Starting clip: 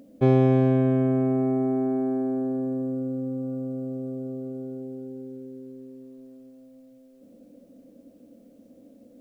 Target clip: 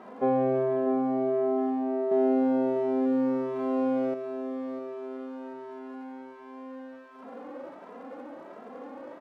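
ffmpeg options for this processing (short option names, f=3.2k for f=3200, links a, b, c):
-filter_complex "[0:a]aeval=exprs='val(0)+0.5*0.0211*sgn(val(0))':c=same,highpass=f=180:p=1,equalizer=f=610:t=o:w=2.8:g=8.5,asettb=1/sr,asplit=3[a][b][c];[a]atrim=end=2.114[d];[b]atrim=start=2.11:end=4.14,asetpts=PTS-STARTPTS,afade=t=in:d=0.004:c=qsin,afade=t=out:st=2.026:d=0.004:c=qsin,acontrast=88[e];[c]atrim=start=4.136[f];[d][e]acrossfade=d=0.004:c1=hsin:c2=qsin[g];[g][f]acrossfade=d=0.004:c1=qsin:c2=hsin,lowpass=1.2k,aemphasis=mode=production:type=riaa,aecho=1:1:648:0.299,asplit=2[h][i];[i]adelay=2.6,afreqshift=1.4[j];[h][j]amix=inputs=2:normalize=1,volume=-3dB"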